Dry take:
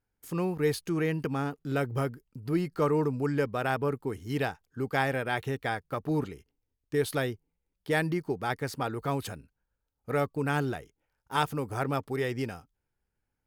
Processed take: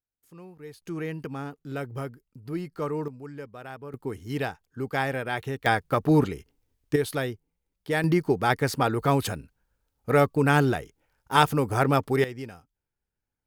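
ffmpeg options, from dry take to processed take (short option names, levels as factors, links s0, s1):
-af "asetnsamples=n=441:p=0,asendcmd='0.82 volume volume -4dB;3.08 volume volume -11.5dB;3.94 volume volume 0.5dB;5.66 volume volume 9dB;6.96 volume volume 1dB;8.04 volume volume 8dB;12.24 volume volume -4.5dB',volume=0.158"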